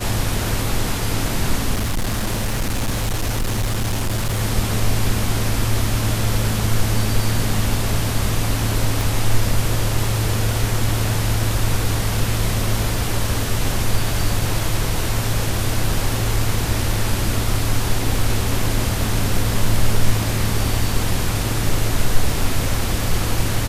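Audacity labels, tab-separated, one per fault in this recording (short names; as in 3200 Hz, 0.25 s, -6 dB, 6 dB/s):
1.730000	4.420000	clipped -16.5 dBFS
9.010000	9.010000	pop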